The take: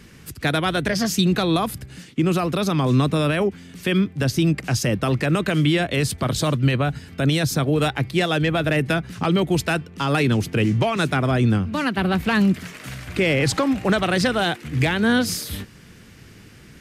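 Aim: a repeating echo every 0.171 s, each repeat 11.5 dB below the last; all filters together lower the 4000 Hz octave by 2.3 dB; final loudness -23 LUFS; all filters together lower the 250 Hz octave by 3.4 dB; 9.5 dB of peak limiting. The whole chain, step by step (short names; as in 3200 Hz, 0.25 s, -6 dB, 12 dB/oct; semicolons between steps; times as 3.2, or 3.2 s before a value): bell 250 Hz -5 dB; bell 4000 Hz -3 dB; limiter -19 dBFS; feedback echo 0.171 s, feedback 27%, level -11.5 dB; gain +4.5 dB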